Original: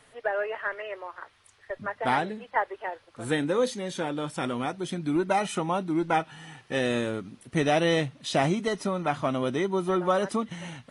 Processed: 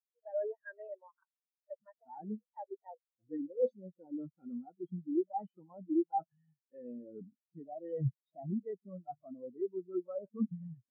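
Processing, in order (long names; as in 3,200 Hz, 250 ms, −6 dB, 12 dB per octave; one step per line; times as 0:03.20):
reversed playback
downward compressor 8 to 1, threshold −36 dBFS, peak gain reduction 16.5 dB
reversed playback
echo ahead of the sound 33 ms −15 dB
every bin expanded away from the loudest bin 4 to 1
level +4 dB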